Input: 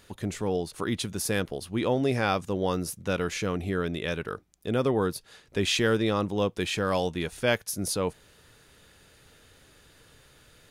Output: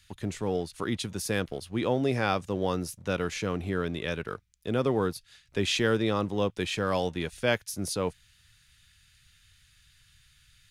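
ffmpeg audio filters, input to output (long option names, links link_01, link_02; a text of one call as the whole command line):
ffmpeg -i in.wav -filter_complex "[0:a]highshelf=frequency=11000:gain=-8.5,acrossover=split=140|1600|3800[link_01][link_02][link_03][link_04];[link_02]aeval=exprs='sgn(val(0))*max(abs(val(0))-0.00211,0)':channel_layout=same[link_05];[link_01][link_05][link_03][link_04]amix=inputs=4:normalize=0,volume=-1dB" out.wav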